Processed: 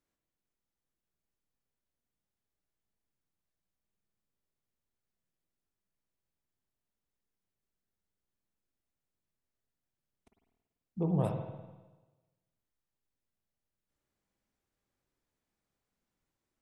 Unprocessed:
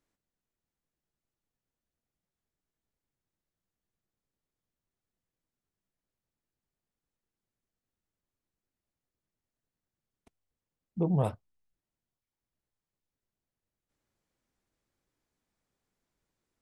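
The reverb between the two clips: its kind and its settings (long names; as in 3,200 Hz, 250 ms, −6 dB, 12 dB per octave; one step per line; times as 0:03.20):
spring reverb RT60 1.2 s, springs 49/54 ms, chirp 60 ms, DRR 3.5 dB
level −4 dB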